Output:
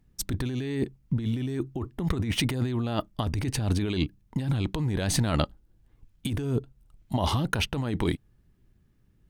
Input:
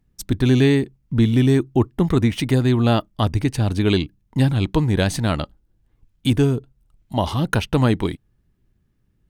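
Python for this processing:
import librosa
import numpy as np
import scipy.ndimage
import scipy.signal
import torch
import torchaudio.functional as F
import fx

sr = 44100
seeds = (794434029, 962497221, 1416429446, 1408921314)

y = fx.over_compress(x, sr, threshold_db=-23.0, ratio=-1.0)
y = y * librosa.db_to_amplitude(-4.0)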